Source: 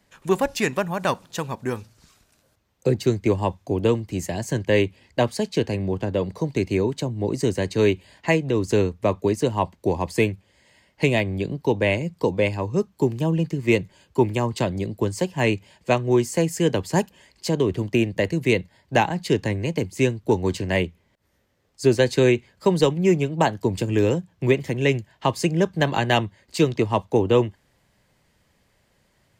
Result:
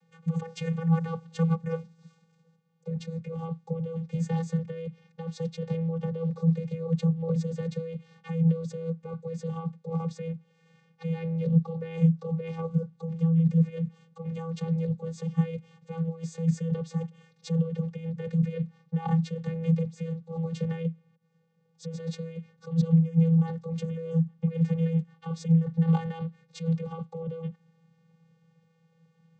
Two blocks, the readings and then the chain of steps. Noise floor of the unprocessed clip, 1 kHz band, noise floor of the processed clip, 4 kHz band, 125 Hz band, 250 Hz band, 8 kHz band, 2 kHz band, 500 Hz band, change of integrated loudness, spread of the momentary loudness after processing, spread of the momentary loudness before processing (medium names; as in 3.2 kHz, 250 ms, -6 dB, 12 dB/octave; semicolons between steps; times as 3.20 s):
-65 dBFS, -15.5 dB, -67 dBFS, under -15 dB, -1.0 dB, -4.5 dB, under -15 dB, under -20 dB, -14.5 dB, -6.0 dB, 13 LU, 6 LU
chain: compressor with a negative ratio -26 dBFS, ratio -1; vocoder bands 16, square 164 Hz